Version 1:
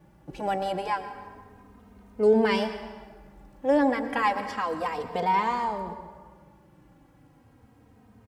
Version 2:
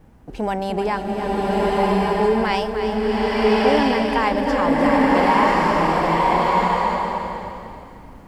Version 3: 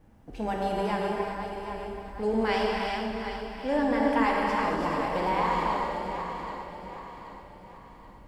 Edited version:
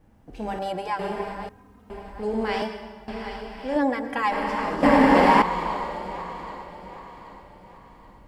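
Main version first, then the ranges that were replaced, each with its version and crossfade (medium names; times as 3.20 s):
3
0.59–0.99 s: from 1
1.49–1.90 s: from 1
2.62–3.08 s: from 1
3.76–4.32 s: from 1
4.83–5.42 s: from 2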